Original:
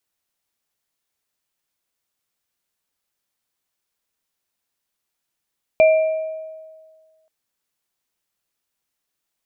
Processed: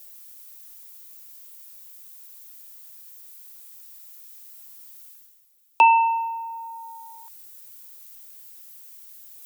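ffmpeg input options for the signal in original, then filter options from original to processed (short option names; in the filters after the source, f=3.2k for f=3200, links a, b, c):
-f lavfi -i "aevalsrc='0.398*pow(10,-3*t/1.68)*sin(2*PI*635*t)+0.119*pow(10,-3*t/0.86)*sin(2*PI*2370*t)':d=1.48:s=44100"
-af "aemphasis=mode=production:type=75fm,areverse,acompressor=mode=upward:threshold=-30dB:ratio=2.5,areverse,afreqshift=280"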